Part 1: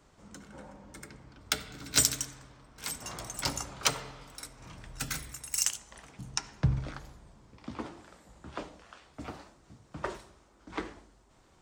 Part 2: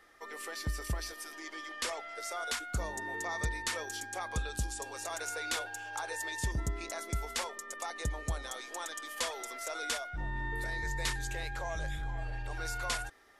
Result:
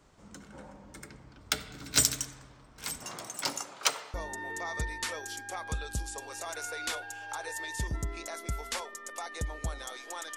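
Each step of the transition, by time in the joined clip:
part 1
3.03–4.14 s: high-pass 150 Hz -> 610 Hz
4.14 s: go over to part 2 from 2.78 s

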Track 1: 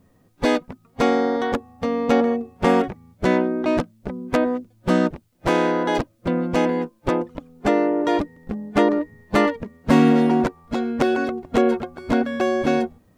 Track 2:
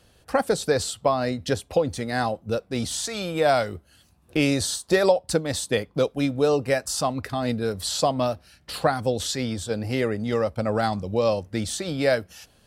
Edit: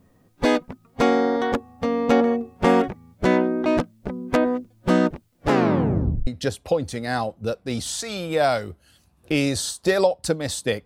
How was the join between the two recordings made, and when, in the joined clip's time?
track 1
5.36 s: tape stop 0.91 s
6.27 s: go over to track 2 from 1.32 s

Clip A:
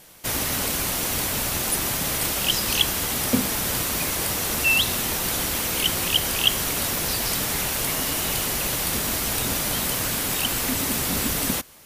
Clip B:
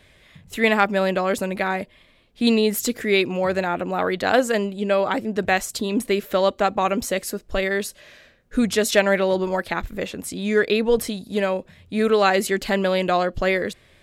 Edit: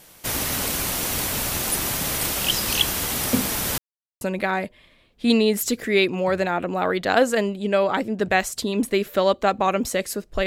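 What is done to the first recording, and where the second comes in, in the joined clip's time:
clip A
3.78–4.21 s: mute
4.21 s: go over to clip B from 1.38 s

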